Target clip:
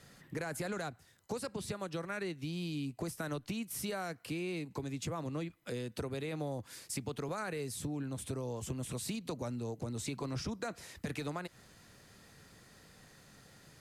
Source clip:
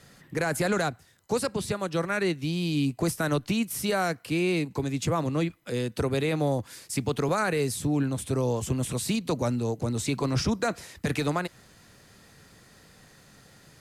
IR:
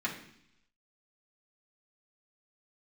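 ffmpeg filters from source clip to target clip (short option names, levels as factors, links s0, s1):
-af "acompressor=threshold=0.0251:ratio=4,volume=0.596"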